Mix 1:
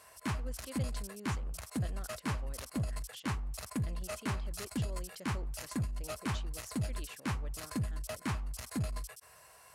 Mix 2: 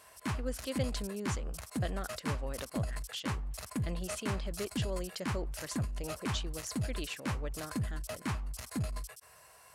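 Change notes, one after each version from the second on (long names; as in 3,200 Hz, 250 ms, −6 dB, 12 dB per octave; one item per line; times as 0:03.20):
speech +9.5 dB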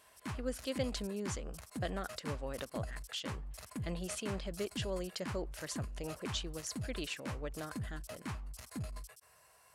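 background −6.5 dB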